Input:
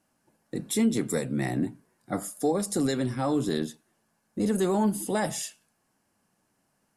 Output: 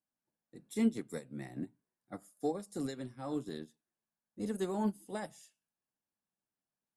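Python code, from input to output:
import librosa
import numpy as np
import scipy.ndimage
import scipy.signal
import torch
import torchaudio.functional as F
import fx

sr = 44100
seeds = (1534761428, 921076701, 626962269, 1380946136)

y = fx.upward_expand(x, sr, threshold_db=-33.0, expansion=2.5)
y = F.gain(torch.from_numpy(y), -4.0).numpy()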